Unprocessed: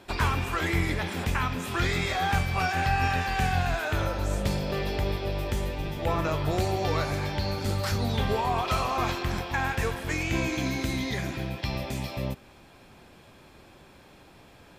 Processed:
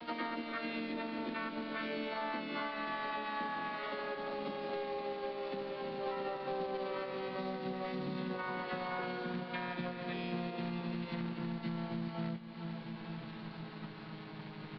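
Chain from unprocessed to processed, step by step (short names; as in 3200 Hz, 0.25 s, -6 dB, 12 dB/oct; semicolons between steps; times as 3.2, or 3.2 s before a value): vocoder on a gliding note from A#3, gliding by -7 st; comb 7.3 ms, depth 80%; echo 0.154 s -21 dB; companded quantiser 4-bit; harmoniser -4 st -17 dB, +5 st -2 dB, +12 st -8 dB; elliptic low-pass 4400 Hz, stop band 40 dB; resonator 290 Hz, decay 1 s, mix 60%; feedback echo 0.452 s, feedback 53%, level -18 dB; compressor 4:1, threshold -49 dBFS, peak gain reduction 18 dB; gain +10 dB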